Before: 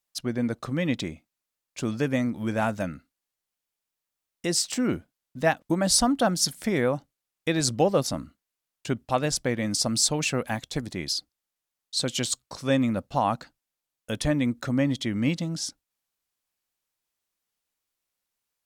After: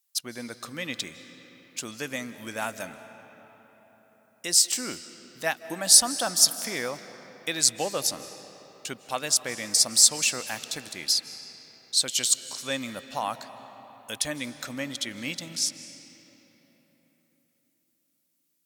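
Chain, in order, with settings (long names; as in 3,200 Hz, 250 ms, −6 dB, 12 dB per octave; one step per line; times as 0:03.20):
spectral tilt +4 dB per octave
comb and all-pass reverb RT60 4.4 s, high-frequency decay 0.6×, pre-delay 120 ms, DRR 12 dB
level −4.5 dB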